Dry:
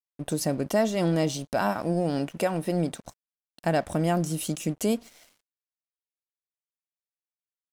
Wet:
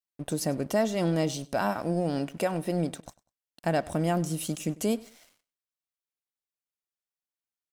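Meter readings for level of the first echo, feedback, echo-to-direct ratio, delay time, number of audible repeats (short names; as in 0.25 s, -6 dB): -22.0 dB, 26%, -21.5 dB, 98 ms, 2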